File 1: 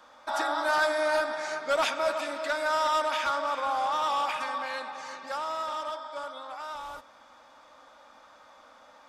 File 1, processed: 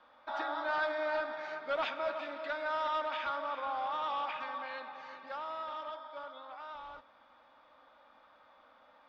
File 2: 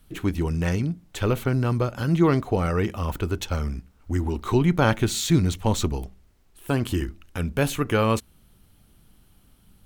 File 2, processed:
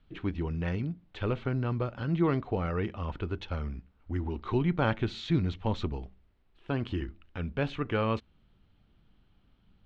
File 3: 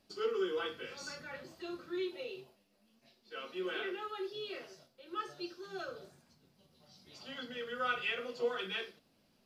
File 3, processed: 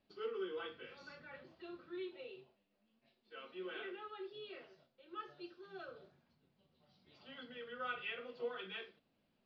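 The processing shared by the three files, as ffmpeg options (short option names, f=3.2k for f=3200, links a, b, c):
-af "lowpass=f=3.8k:w=0.5412,lowpass=f=3.8k:w=1.3066,volume=-7.5dB"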